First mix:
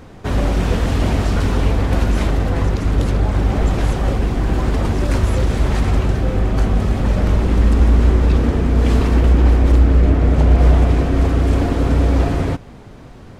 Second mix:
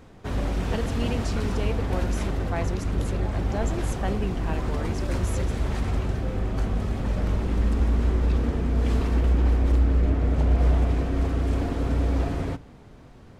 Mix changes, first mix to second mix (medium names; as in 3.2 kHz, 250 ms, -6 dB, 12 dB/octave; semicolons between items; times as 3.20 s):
background -10.5 dB; reverb: on, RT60 0.90 s